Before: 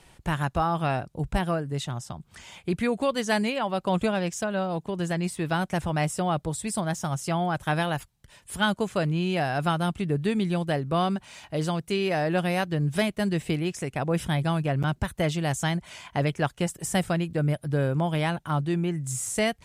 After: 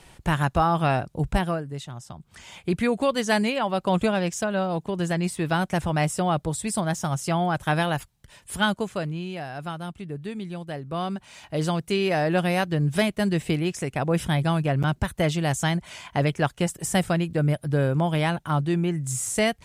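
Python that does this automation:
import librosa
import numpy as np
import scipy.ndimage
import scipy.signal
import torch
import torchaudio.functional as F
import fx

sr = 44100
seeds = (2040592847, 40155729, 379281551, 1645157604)

y = fx.gain(x, sr, db=fx.line((1.3, 4.0), (1.87, -6.0), (2.59, 2.5), (8.57, 2.5), (9.39, -8.0), (10.65, -8.0), (11.65, 2.5)))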